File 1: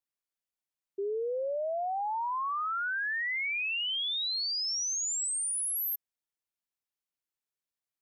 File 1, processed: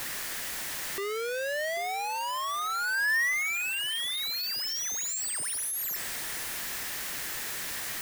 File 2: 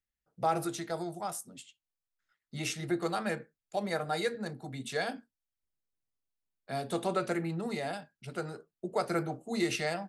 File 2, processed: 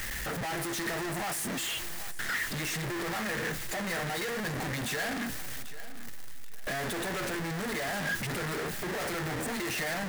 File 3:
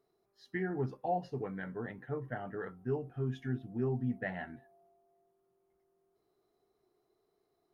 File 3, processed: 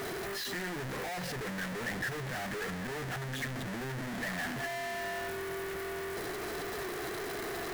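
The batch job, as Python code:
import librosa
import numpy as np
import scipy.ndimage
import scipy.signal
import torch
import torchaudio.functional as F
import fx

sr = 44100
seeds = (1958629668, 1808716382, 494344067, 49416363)

y = np.sign(x) * np.sqrt(np.mean(np.square(x)))
y = fx.peak_eq(y, sr, hz=1800.0, db=8.5, octaves=0.5)
y = fx.echo_feedback(y, sr, ms=789, feedback_pct=24, wet_db=-15.5)
y = y * 10.0 ** (1.5 / 20.0)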